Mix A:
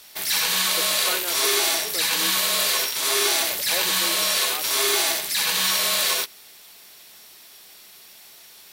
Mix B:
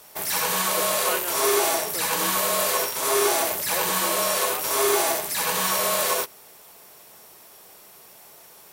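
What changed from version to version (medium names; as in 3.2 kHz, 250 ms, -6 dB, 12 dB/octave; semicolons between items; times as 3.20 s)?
background: add ten-band graphic EQ 125 Hz +7 dB, 500 Hz +7 dB, 1 kHz +5 dB, 2 kHz -3 dB, 4 kHz -9 dB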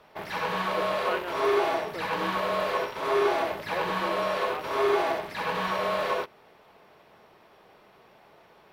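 master: add distance through air 360 m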